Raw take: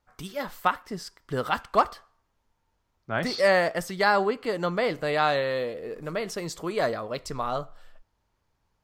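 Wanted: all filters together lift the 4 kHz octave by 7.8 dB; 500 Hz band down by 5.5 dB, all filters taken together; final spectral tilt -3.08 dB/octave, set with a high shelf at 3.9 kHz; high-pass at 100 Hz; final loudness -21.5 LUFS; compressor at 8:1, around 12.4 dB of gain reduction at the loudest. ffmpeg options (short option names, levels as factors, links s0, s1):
-af "highpass=100,equalizer=f=500:t=o:g=-7,highshelf=f=3900:g=4.5,equalizer=f=4000:t=o:g=6.5,acompressor=threshold=0.0355:ratio=8,volume=4.22"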